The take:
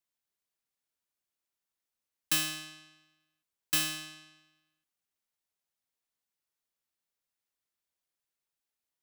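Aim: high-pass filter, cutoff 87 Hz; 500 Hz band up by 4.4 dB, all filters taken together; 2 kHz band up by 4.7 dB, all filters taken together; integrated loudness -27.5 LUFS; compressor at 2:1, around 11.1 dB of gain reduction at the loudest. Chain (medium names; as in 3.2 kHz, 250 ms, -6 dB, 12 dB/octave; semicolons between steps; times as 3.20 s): high-pass 87 Hz; peaking EQ 500 Hz +6.5 dB; peaking EQ 2 kHz +6 dB; compression 2:1, threshold -43 dBFS; trim +13 dB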